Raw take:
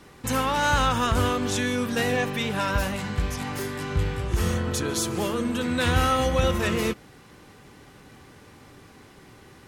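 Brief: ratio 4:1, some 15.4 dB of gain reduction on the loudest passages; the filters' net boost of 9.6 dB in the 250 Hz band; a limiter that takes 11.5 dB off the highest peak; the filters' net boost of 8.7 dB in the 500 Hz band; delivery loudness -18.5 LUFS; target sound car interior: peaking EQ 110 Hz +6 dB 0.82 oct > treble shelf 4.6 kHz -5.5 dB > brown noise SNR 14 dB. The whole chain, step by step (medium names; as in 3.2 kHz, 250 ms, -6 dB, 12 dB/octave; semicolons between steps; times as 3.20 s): peaking EQ 250 Hz +8.5 dB; peaking EQ 500 Hz +7.5 dB; compression 4:1, threshold -32 dBFS; peak limiter -31 dBFS; peaking EQ 110 Hz +6 dB 0.82 oct; treble shelf 4.6 kHz -5.5 dB; brown noise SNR 14 dB; trim +21 dB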